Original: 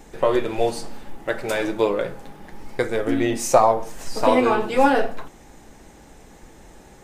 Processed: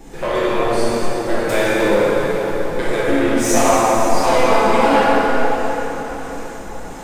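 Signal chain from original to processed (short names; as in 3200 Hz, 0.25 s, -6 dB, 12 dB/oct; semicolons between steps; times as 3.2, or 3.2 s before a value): bell 63 Hz -3 dB 2.8 oct; in parallel at +1.5 dB: compressor, threshold -25 dBFS, peak gain reduction 15 dB; on the sum: harmonic tremolo 1.5 Hz, depth 50%, crossover 570 Hz; soft clip -16 dBFS, distortion -10 dB; on a send: diffused feedback echo 0.534 s, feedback 46%, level -15.5 dB; on the sum: plate-style reverb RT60 4.3 s, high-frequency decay 0.65×, DRR -9 dB; gain -1 dB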